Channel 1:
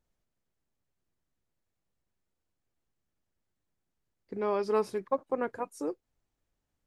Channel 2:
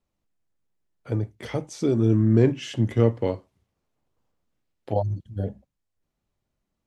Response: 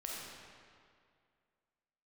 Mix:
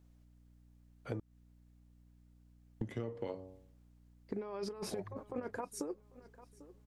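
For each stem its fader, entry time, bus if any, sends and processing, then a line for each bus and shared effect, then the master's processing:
0.0 dB, 0.00 s, no send, echo send −23.5 dB, compressor whose output falls as the input rises −34 dBFS, ratio −0.5; mains hum 60 Hz, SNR 20 dB
−2.5 dB, 0.00 s, muted 0:01.20–0:02.81, no send, no echo send, low-shelf EQ 130 Hz −9.5 dB; hum removal 93.72 Hz, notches 12; brickwall limiter −15 dBFS, peak gain reduction 5 dB; automatic ducking −14 dB, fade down 0.50 s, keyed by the first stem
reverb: not used
echo: repeating echo 795 ms, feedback 35%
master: downward compressor 8 to 1, threshold −36 dBFS, peak gain reduction 13.5 dB

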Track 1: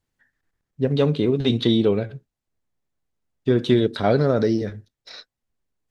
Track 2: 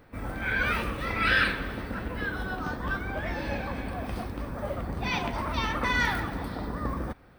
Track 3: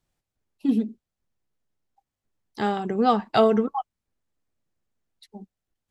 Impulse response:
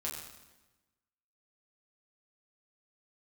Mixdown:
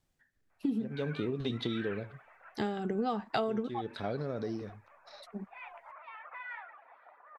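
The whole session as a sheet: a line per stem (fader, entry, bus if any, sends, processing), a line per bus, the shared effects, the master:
−5.5 dB, 0.00 s, no send, automatic ducking −10 dB, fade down 1.25 s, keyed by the third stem
−15.0 dB, 0.50 s, no send, Chebyshev band-pass filter 650–2,500 Hz, order 3; reverb reduction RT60 0.54 s
+2.5 dB, 0.00 s, no send, rotating-speaker cabinet horn 0.8 Hz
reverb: not used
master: downward compressor 6 to 1, threshold −30 dBFS, peak gain reduction 17.5 dB

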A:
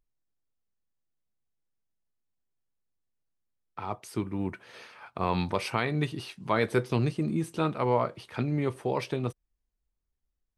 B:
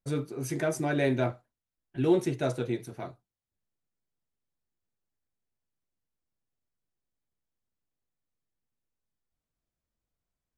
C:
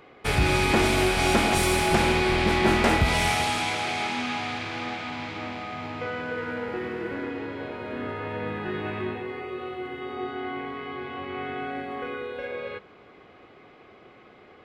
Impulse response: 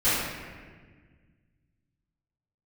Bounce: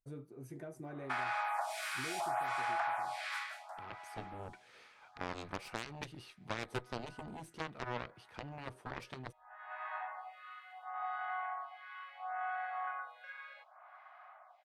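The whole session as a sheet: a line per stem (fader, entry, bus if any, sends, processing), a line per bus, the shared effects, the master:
−8.0 dB, 0.00 s, no send, harmonic generator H 6 −21 dB, 7 −13 dB, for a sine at −10.5 dBFS
−14.0 dB, 0.00 s, no send, downward compressor 4 to 1, threshold −28 dBFS, peak gain reduction 9 dB; parametric band 4,800 Hz −11.5 dB 2.7 octaves
−1.5 dB, 0.85 s, no send, Butterworth high-pass 630 Hz 96 dB per octave; high shelf with overshoot 2,000 Hz −8.5 dB, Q 1.5; phaser with staggered stages 0.7 Hz; automatic ducking −22 dB, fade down 0.40 s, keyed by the first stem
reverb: not used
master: downward compressor 2.5 to 1, threshold −36 dBFS, peak gain reduction 9 dB

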